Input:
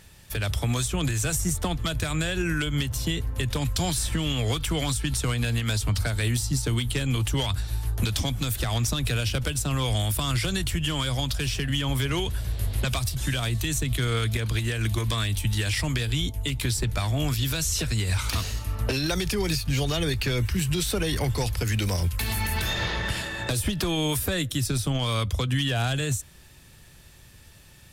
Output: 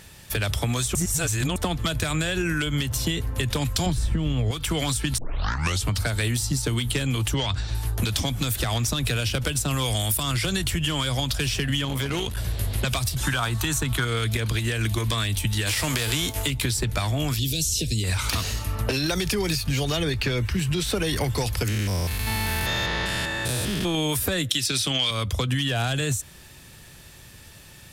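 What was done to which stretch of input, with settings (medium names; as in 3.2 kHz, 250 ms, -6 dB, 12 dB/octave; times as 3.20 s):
0.95–1.56 s: reverse
3.86–4.51 s: tilt EQ -3 dB/octave
5.18 s: tape start 0.66 s
7.34–7.75 s: low-pass 6.8 kHz 24 dB/octave
9.68–10.23 s: treble shelf 6.3 kHz +9 dB
11.85–12.37 s: valve stage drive 25 dB, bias 0.75
13.23–14.05 s: high-order bell 1.1 kHz +10 dB 1.2 oct
15.66–16.46 s: formants flattened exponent 0.6
17.39–18.04 s: Chebyshev band-stop 390–3400 Hz
20.02–20.94 s: treble shelf 7.1 kHz -9.5 dB
21.68–23.95 s: spectrogram pixelated in time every 200 ms
24.49–25.11 s: frequency weighting D
whole clip: bass shelf 79 Hz -7 dB; compression, threshold -27 dBFS; trim +6 dB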